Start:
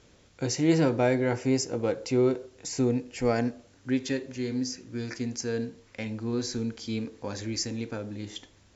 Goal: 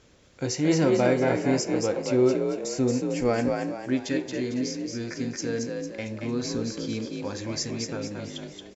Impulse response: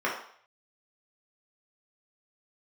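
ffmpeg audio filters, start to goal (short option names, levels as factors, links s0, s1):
-filter_complex "[0:a]asplit=6[s0][s1][s2][s3][s4][s5];[s1]adelay=226,afreqshift=46,volume=0.596[s6];[s2]adelay=452,afreqshift=92,volume=0.251[s7];[s3]adelay=678,afreqshift=138,volume=0.105[s8];[s4]adelay=904,afreqshift=184,volume=0.0442[s9];[s5]adelay=1130,afreqshift=230,volume=0.0186[s10];[s0][s6][s7][s8][s9][s10]amix=inputs=6:normalize=0,asplit=2[s11][s12];[1:a]atrim=start_sample=2205[s13];[s12][s13]afir=irnorm=-1:irlink=0,volume=0.0631[s14];[s11][s14]amix=inputs=2:normalize=0"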